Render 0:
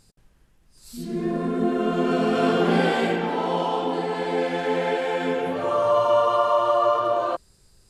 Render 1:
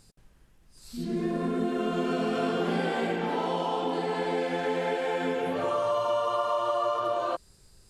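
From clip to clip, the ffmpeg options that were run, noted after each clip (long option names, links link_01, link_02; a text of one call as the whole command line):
ffmpeg -i in.wav -filter_complex "[0:a]acrossover=split=2100|5300[link_01][link_02][link_03];[link_01]acompressor=threshold=-26dB:ratio=4[link_04];[link_02]acompressor=threshold=-44dB:ratio=4[link_05];[link_03]acompressor=threshold=-55dB:ratio=4[link_06];[link_04][link_05][link_06]amix=inputs=3:normalize=0" out.wav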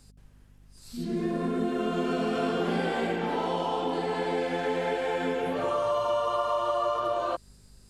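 ffmpeg -i in.wav -af "aeval=exprs='val(0)+0.00178*(sin(2*PI*50*n/s)+sin(2*PI*2*50*n/s)/2+sin(2*PI*3*50*n/s)/3+sin(2*PI*4*50*n/s)/4+sin(2*PI*5*50*n/s)/5)':channel_layout=same" out.wav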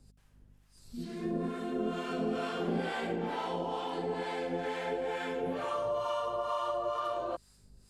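ffmpeg -i in.wav -filter_complex "[0:a]acrossover=split=710[link_01][link_02];[link_01]aeval=exprs='val(0)*(1-0.7/2+0.7/2*cos(2*PI*2.2*n/s))':channel_layout=same[link_03];[link_02]aeval=exprs='val(0)*(1-0.7/2-0.7/2*cos(2*PI*2.2*n/s))':channel_layout=same[link_04];[link_03][link_04]amix=inputs=2:normalize=0,volume=-2.5dB" out.wav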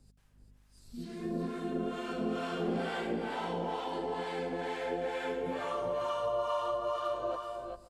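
ffmpeg -i in.wav -af "aecho=1:1:380|397|536:0.376|0.398|0.106,volume=-2dB" out.wav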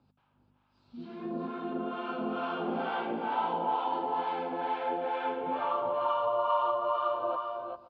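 ffmpeg -i in.wav -af "highpass=160,equalizer=frequency=180:width_type=q:width=4:gain=-7,equalizer=frequency=430:width_type=q:width=4:gain=-6,equalizer=frequency=900:width_type=q:width=4:gain=9,equalizer=frequency=1300:width_type=q:width=4:gain=5,equalizer=frequency=1900:width_type=q:width=4:gain=-10,lowpass=frequency=3300:width=0.5412,lowpass=frequency=3300:width=1.3066,volume=2dB" out.wav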